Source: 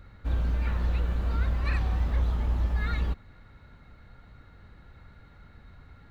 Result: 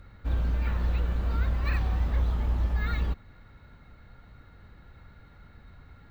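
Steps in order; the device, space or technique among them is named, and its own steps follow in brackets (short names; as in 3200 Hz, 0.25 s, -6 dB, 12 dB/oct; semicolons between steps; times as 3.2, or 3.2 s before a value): crushed at another speed (playback speed 0.5×; sample-and-hold 4×; playback speed 2×)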